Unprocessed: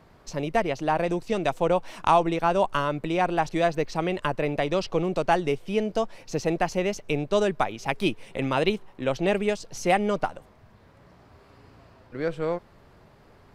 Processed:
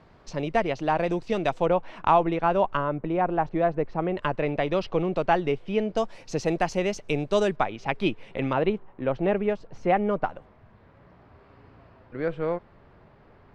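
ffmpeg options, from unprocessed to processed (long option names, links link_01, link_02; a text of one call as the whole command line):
ffmpeg -i in.wav -af "asetnsamples=nb_out_samples=441:pad=0,asendcmd='1.66 lowpass f 2600;2.77 lowpass f 1400;4.17 lowpass f 3300;5.97 lowpass f 8200;7.56 lowpass f 3400;8.53 lowpass f 1700;10.24 lowpass f 2700',lowpass=5000" out.wav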